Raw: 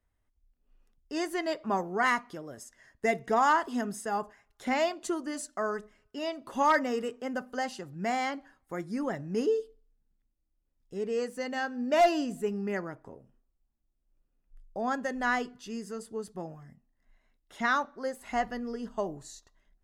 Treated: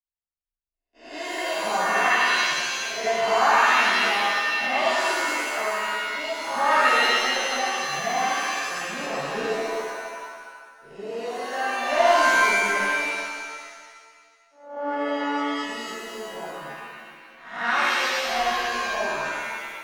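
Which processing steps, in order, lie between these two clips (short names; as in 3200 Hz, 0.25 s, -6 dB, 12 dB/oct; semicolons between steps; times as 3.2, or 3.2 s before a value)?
spectral swells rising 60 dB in 0.60 s; LPF 4200 Hz 12 dB/oct; resonant low shelf 470 Hz -6.5 dB, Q 1.5; gate -54 dBFS, range -29 dB; 12.78–15.49 vocoder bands 16, saw 288 Hz; shimmer reverb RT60 1.7 s, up +7 st, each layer -2 dB, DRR -7.5 dB; gain -5 dB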